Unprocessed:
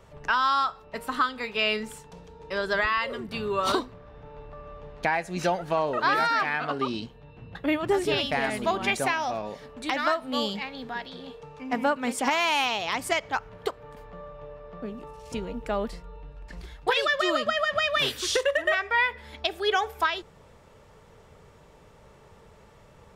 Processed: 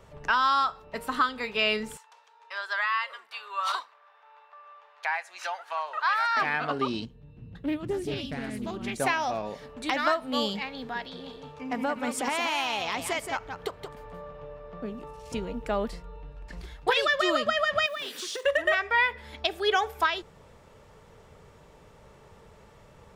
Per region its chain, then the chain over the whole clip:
0:01.97–0:06.37: high-pass filter 940 Hz 24 dB per octave + spectral tilt −2 dB per octave
0:07.05–0:09.00: drawn EQ curve 250 Hz 0 dB, 780 Hz −15 dB, 3,300 Hz −10 dB, 9,100 Hz −6 dB + highs frequency-modulated by the lows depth 0.16 ms
0:11.09–0:14.45: downward compressor 2 to 1, threshold −28 dBFS + single-tap delay 175 ms −7 dB
0:17.86–0:18.45: log-companded quantiser 6 bits + downward compressor 4 to 1, threshold −33 dBFS + linear-phase brick-wall high-pass 160 Hz
whole clip: no processing

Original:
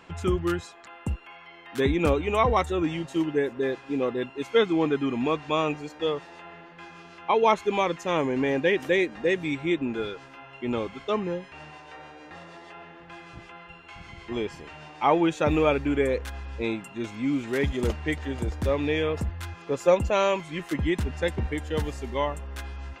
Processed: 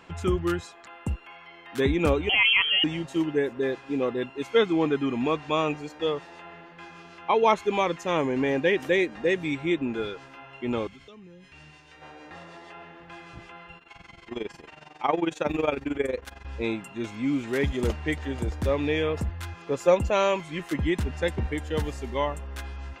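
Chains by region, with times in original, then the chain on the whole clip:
0:02.29–0:02.84: high-frequency loss of the air 150 metres + voice inversion scrambler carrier 3,200 Hz + envelope flattener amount 50%
0:10.87–0:12.02: parametric band 750 Hz −13 dB 2.4 octaves + downward compressor 16 to 1, threshold −44 dBFS
0:13.78–0:16.45: parametric band 76 Hz −8.5 dB 1.7 octaves + amplitude modulation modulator 22 Hz, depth 70%
whole clip: no processing

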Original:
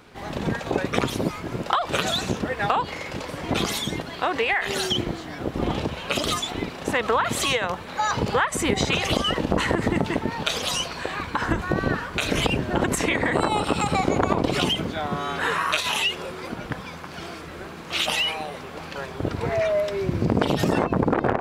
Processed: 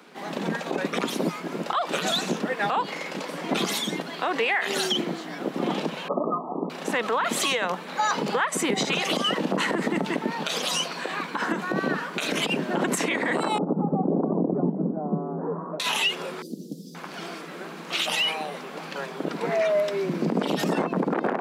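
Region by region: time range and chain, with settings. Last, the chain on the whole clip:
0:06.08–0:06.70: linear-phase brick-wall low-pass 1,300 Hz + dynamic equaliser 670 Hz, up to +3 dB, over −41 dBFS, Q 0.95
0:13.58–0:15.80: Bessel low-pass filter 570 Hz, order 6 + spectral tilt −2.5 dB per octave
0:16.42–0:16.95: inverse Chebyshev band-stop filter 880–2,200 Hz, stop band 60 dB + parametric band 14,000 Hz +7.5 dB 0.34 octaves + highs frequency-modulated by the lows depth 0.26 ms
whole clip: Butterworth high-pass 160 Hz 72 dB per octave; brickwall limiter −14.5 dBFS

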